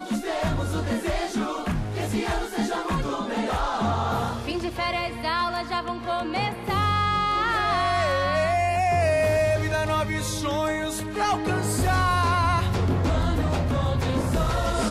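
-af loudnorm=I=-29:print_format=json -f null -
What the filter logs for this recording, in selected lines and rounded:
"input_i" : "-24.6",
"input_tp" : "-13.8",
"input_lra" : "3.6",
"input_thresh" : "-34.6",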